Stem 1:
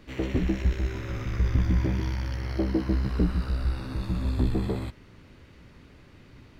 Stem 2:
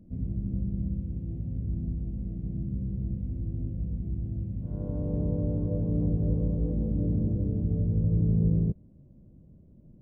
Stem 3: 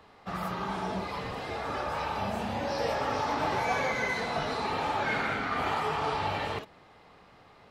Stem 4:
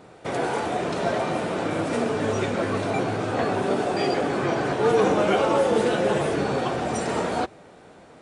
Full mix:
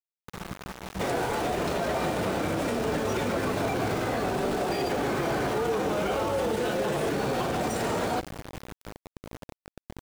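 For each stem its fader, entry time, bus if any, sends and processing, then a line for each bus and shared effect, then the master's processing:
-18.5 dB, 0.00 s, no send, comb 5.2 ms, depth 50%; de-hum 61.04 Hz, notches 18
-8.5 dB, 2.25 s, no send, tone controls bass -3 dB, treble -1 dB
-9.0 dB, 0.00 s, no send, tone controls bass +14 dB, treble -5 dB
+2.0 dB, 0.75 s, no send, hum notches 50/100 Hz; peak limiter -17.5 dBFS, peak gain reduction 8.5 dB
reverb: none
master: small samples zeroed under -31 dBFS; peak limiter -19.5 dBFS, peak gain reduction 6 dB

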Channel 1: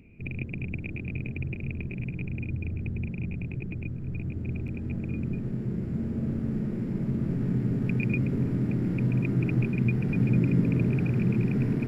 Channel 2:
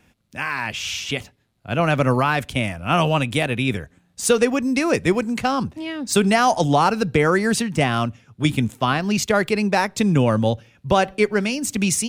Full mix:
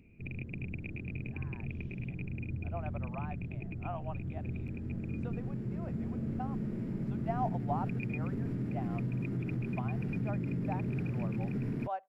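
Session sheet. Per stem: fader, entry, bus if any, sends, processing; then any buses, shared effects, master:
-6.0 dB, 0.00 s, no send, peak limiter -21.5 dBFS, peak gain reduction 8.5 dB
-11.0 dB, 0.95 s, no send, ladder band-pass 810 Hz, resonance 55%; upward expansion 1.5:1, over -39 dBFS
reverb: none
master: none

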